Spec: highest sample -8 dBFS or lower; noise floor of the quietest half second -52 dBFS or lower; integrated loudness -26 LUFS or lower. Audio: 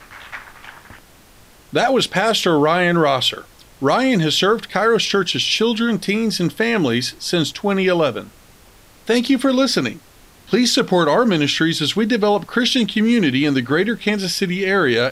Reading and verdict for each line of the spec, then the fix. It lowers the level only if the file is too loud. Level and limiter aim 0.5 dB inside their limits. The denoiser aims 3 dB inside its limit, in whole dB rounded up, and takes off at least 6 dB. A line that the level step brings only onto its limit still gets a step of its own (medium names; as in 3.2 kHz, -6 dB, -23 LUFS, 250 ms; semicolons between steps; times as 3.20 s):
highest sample -3.0 dBFS: fail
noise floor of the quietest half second -47 dBFS: fail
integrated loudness -17.5 LUFS: fail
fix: trim -9 dB